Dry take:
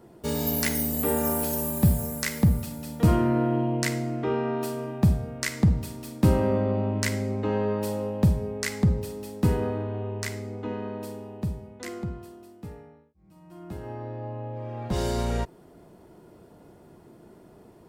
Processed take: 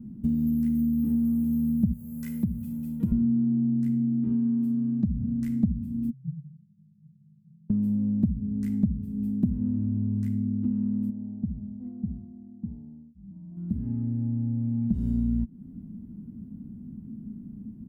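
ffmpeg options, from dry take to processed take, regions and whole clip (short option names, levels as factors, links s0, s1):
-filter_complex "[0:a]asettb=1/sr,asplit=3[s0][s1][s2];[s0]atrim=end=1.934[s3];[s1]atrim=start=1.93:end=3.12,asetpts=PTS-STARTPTS,afade=t=in:d=0.004:c=qsin,afade=t=out:st=1.186:d=0.004:c=qsin,highpass=f=420:p=1,highshelf=f=12000:g=6,aecho=1:1:2:0.53,atrim=end_sample=52479[s4];[s2]atrim=start=3.116[s5];[s3][s4]acrossfade=d=0.004:c1=hsin:c2=qsin[s6];[s6][s5]acrossfade=d=0.004:c1=qsin:c2=hsin,asettb=1/sr,asplit=3[s7][s8][s9];[s7]atrim=end=4.734[s10];[s8]atrim=start=4.73:end=5.32,asetpts=PTS-STARTPTS,afade=t=in:d=0.004:c=qsin,afade=t=out:st=0.586:d=0.004:c=qsin,acompressor=threshold=0.0501:ratio=2:attack=3.2:release=140:knee=1:detection=peak,lowpass=f=5400:t=q:w=1.9[s11];[s9]atrim=start=5.316[s12];[s10][s11]acrossfade=d=0.004:c1=hsin:c2=qsin[s13];[s13][s12]acrossfade=d=0.004:c1=qsin:c2=hsin,asettb=1/sr,asplit=3[s14][s15][s16];[s14]atrim=end=6.104[s17];[s15]atrim=start=6.1:end=7.7,asetpts=PTS-STARTPTS,afade=t=in:d=0.004:c=qsin,afade=t=out:st=1.596:d=0.004:c=qsin,acompressor=threshold=0.0282:ratio=4:attack=3.2:release=140:knee=1:detection=peak,asuperpass=centerf=150:order=8:qfactor=5[s18];[s16]atrim=start=7.696[s19];[s17][s18]acrossfade=d=0.004:c1=hsin:c2=qsin[s20];[s20][s19]acrossfade=d=0.004:c1=qsin:c2=hsin,asettb=1/sr,asplit=3[s21][s22][s23];[s21]atrim=end=11.104[s24];[s22]atrim=start=11.1:end=13.57,asetpts=PTS-STARTPTS,afade=t=in:d=0.004:c=qsin,afade=t=out:st=2.466:d=0.004:c=qsin,lowpass=f=740:t=q:w=4.2,acompressor=threshold=0.00141:ratio=1.5:attack=3.2:release=140:knee=1:detection=peak[s25];[s23]atrim=start=13.566[s26];[s24][s25]acrossfade=d=0.004:c1=hsin:c2=qsin[s27];[s27][s26]acrossfade=d=0.004:c1=qsin:c2=hsin,firequalizer=gain_entry='entry(140,0);entry(230,14);entry(350,-17);entry(580,-25);entry(1500,-22);entry(3000,-21);entry(4400,-27);entry(13000,-13)':delay=0.05:min_phase=1,acompressor=threshold=0.0251:ratio=4,lowshelf=f=320:g=10.5"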